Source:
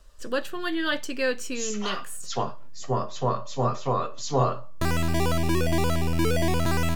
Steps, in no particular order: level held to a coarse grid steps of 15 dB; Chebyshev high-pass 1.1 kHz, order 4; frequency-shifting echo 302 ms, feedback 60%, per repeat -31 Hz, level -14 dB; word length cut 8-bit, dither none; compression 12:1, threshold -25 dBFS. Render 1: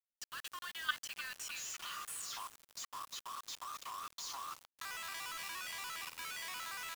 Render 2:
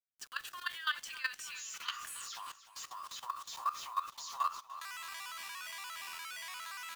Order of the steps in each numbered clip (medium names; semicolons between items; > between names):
compression > Chebyshev high-pass > level held to a coarse grid > frequency-shifting echo > word length cut; Chebyshev high-pass > word length cut > compression > frequency-shifting echo > level held to a coarse grid